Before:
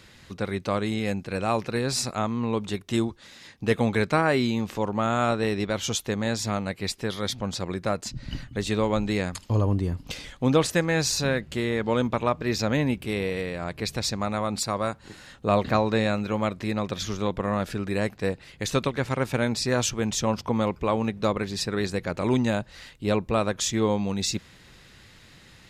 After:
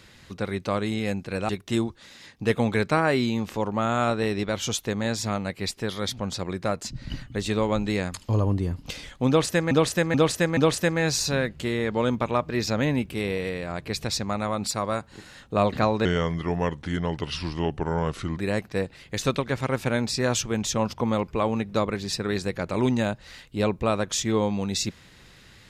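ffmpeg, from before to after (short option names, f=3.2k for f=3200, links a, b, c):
-filter_complex "[0:a]asplit=7[a][b][c][d][e][f][g];[a]atrim=end=1.492[h];[b]atrim=start=2.698:end=10.922[i];[c]atrim=start=10.488:end=10.922[j];[d]atrim=start=10.488:end=10.922[k];[e]atrim=start=10.488:end=15.974[l];[f]atrim=start=15.97:end=17.85,asetpts=PTS-STARTPTS,asetrate=35721,aresample=44100[m];[g]atrim=start=17.846[n];[h][i]acrossfade=d=0.004:c1=hsin:c2=hsin[o];[o][j]acrossfade=d=0.004:c1=hsin:c2=hsin[p];[p][k]acrossfade=d=0.004:c1=hsin:c2=hsin[q];[q][l]acrossfade=d=0.004:c1=hsin:c2=hsin[r];[r][m]acrossfade=d=0.004:c1=hsin:c2=hsin[s];[s][n]acrossfade=d=0.004:c1=hsin:c2=hsin"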